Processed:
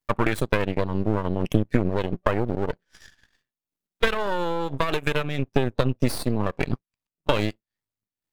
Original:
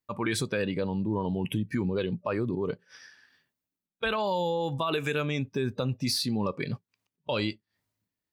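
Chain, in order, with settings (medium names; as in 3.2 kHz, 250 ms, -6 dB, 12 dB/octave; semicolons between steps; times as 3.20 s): half-wave rectifier; transient shaper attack +10 dB, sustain -12 dB; dynamic bell 5.2 kHz, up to -8 dB, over -51 dBFS, Q 1.1; trim +5.5 dB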